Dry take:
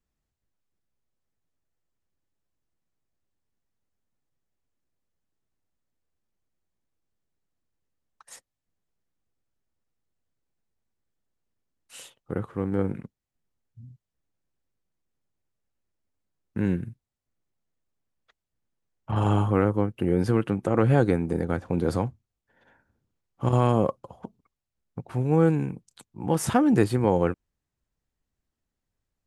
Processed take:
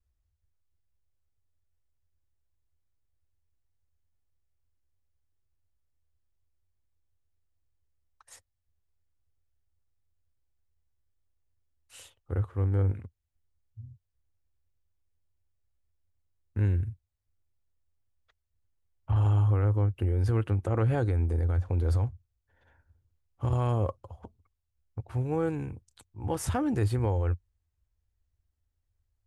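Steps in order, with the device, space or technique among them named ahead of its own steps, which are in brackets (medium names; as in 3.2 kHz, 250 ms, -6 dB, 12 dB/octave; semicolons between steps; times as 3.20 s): car stereo with a boomy subwoofer (resonant low shelf 120 Hz +11 dB, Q 3; peak limiter -13.5 dBFS, peak gain reduction 7 dB); trim -5.5 dB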